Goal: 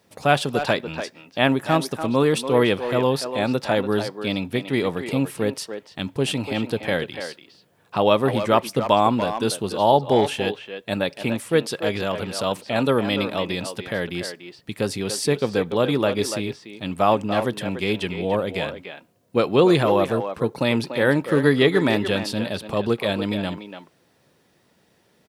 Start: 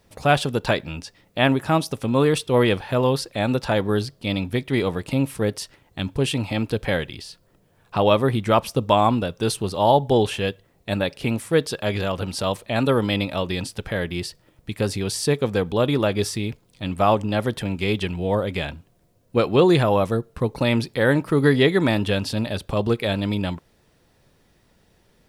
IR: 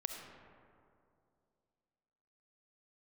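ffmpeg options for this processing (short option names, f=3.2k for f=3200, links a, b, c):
-filter_complex "[0:a]highpass=140,asplit=2[a][b];[b]adelay=290,highpass=300,lowpass=3.4k,asoftclip=type=hard:threshold=-11.5dB,volume=-8dB[c];[a][c]amix=inputs=2:normalize=0"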